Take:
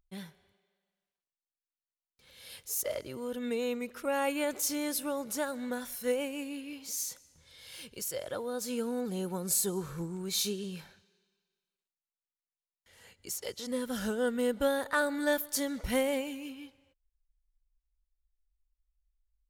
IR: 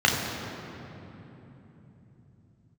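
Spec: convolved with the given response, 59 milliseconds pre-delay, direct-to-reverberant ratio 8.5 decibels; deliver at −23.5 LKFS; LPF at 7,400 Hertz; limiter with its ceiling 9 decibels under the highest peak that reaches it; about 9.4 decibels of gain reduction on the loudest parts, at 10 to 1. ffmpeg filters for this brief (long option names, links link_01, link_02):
-filter_complex "[0:a]lowpass=7400,acompressor=threshold=-33dB:ratio=10,alimiter=level_in=7.5dB:limit=-24dB:level=0:latency=1,volume=-7.5dB,asplit=2[link_01][link_02];[1:a]atrim=start_sample=2205,adelay=59[link_03];[link_02][link_03]afir=irnorm=-1:irlink=0,volume=-26.5dB[link_04];[link_01][link_04]amix=inputs=2:normalize=0,volume=17dB"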